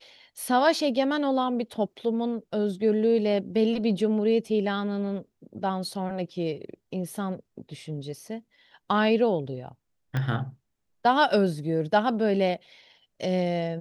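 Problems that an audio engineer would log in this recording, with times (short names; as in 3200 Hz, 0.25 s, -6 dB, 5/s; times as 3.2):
10.17 pop -17 dBFS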